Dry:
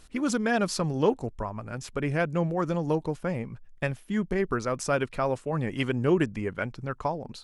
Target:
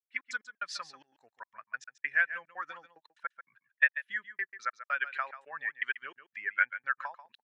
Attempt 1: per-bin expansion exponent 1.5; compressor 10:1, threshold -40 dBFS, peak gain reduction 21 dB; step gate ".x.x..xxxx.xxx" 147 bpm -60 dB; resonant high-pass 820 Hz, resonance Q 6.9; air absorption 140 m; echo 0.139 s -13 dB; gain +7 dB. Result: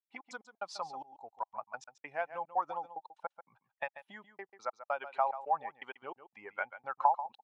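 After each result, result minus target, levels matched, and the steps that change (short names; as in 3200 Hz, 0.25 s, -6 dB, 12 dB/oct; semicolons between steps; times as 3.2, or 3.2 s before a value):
2000 Hz band -10.5 dB; compressor: peak gain reduction +6 dB
change: resonant high-pass 1700 Hz, resonance Q 6.9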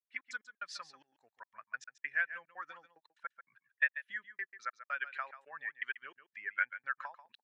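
compressor: peak gain reduction +6 dB
change: compressor 10:1, threshold -33.5 dBFS, peak gain reduction 15.5 dB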